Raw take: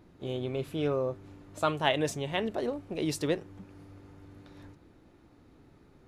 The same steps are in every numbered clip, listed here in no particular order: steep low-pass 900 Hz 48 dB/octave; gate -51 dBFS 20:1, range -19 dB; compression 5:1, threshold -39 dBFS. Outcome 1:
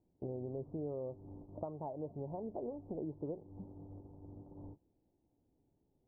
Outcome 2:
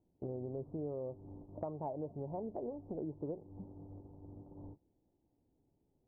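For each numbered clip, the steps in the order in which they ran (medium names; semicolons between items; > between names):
gate > compression > steep low-pass; gate > steep low-pass > compression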